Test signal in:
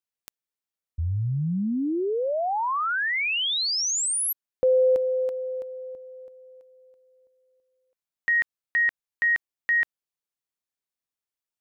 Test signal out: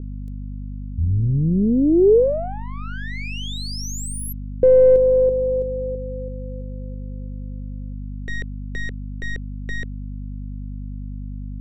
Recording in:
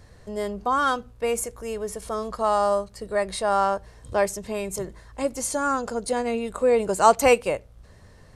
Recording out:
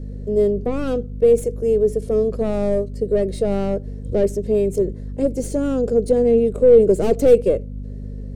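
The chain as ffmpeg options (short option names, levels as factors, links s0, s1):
-af "aeval=exprs='(tanh(10*val(0)+0.45)-tanh(0.45))/10':c=same,aeval=exprs='val(0)+0.0126*(sin(2*PI*50*n/s)+sin(2*PI*2*50*n/s)/2+sin(2*PI*3*50*n/s)/3+sin(2*PI*4*50*n/s)/4+sin(2*PI*5*50*n/s)/5)':c=same,lowshelf=f=660:t=q:w=3:g=13.5,volume=0.562"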